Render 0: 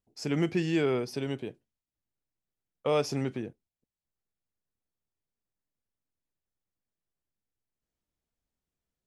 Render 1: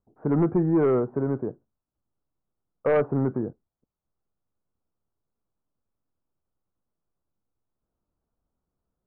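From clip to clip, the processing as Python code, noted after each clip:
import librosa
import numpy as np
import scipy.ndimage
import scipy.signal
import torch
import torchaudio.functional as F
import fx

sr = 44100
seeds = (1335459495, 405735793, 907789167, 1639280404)

y = scipy.signal.sosfilt(scipy.signal.butter(8, 1400.0, 'lowpass', fs=sr, output='sos'), x)
y = fx.fold_sine(y, sr, drive_db=4, ceiling_db=-15.5)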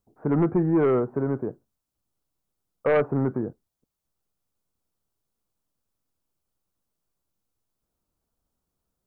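y = fx.high_shelf(x, sr, hz=2500.0, db=10.5)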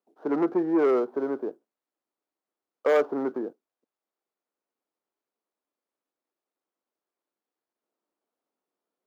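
y = scipy.signal.medfilt(x, 15)
y = scipy.signal.sosfilt(scipy.signal.butter(4, 290.0, 'highpass', fs=sr, output='sos'), y)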